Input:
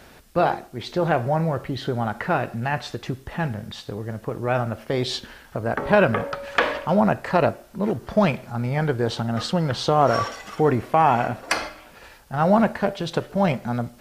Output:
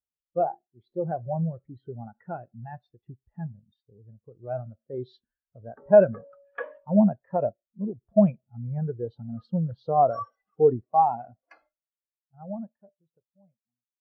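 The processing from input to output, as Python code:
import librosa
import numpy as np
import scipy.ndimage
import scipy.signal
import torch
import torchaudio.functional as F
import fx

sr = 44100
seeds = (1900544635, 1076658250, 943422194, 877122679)

y = fx.fade_out_tail(x, sr, length_s=3.43)
y = fx.spectral_expand(y, sr, expansion=2.5)
y = y * librosa.db_to_amplitude(-2.5)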